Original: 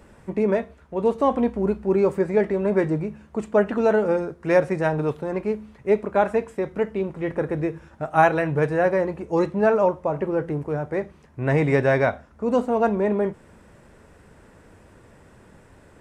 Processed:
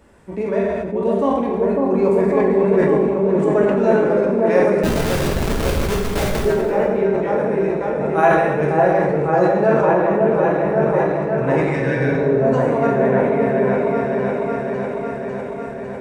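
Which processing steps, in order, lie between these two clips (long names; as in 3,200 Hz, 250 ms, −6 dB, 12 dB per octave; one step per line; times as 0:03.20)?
low-shelf EQ 60 Hz −4.5 dB
on a send: echo whose low-pass opens from repeat to repeat 551 ms, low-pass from 750 Hz, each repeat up 1 octave, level 0 dB
0:04.83–0:06.45: on the sum: comparator with hysteresis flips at −15.5 dBFS
0:11.67–0:12.27: healed spectral selection 260–1,400 Hz both
dense smooth reverb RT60 1.2 s, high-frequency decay 0.95×, DRR −1 dB
level that may fall only so fast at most 32 dB per second
level −2.5 dB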